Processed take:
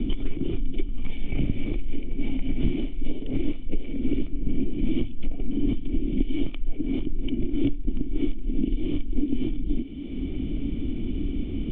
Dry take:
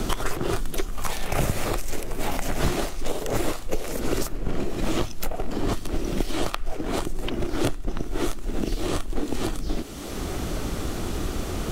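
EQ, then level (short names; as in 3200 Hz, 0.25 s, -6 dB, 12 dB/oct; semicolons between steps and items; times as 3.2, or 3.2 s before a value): vocal tract filter i; low shelf 67 Hz +10.5 dB; +6.5 dB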